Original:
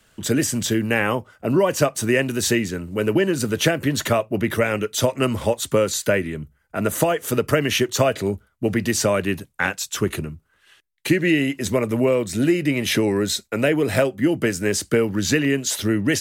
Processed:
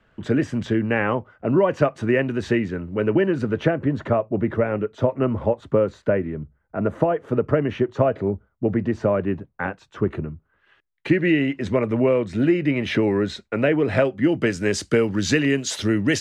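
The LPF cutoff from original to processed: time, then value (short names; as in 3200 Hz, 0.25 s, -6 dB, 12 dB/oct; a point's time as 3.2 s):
3.36 s 1900 Hz
3.88 s 1100 Hz
9.96 s 1100 Hz
11.22 s 2400 Hz
13.88 s 2400 Hz
14.8 s 5900 Hz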